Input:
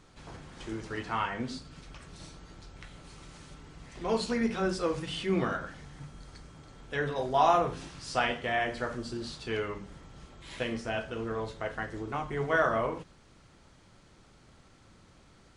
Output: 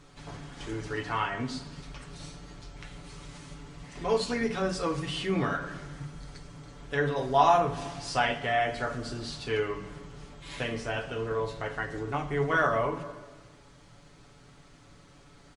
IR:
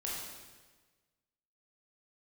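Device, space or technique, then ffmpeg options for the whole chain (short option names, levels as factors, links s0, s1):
ducked reverb: -filter_complex "[0:a]aecho=1:1:7:0.65,asplit=3[s0][s1][s2];[1:a]atrim=start_sample=2205[s3];[s1][s3]afir=irnorm=-1:irlink=0[s4];[s2]apad=whole_len=686507[s5];[s4][s5]sidechaincompress=threshold=0.0178:ratio=8:attack=16:release=213,volume=0.335[s6];[s0][s6]amix=inputs=2:normalize=0"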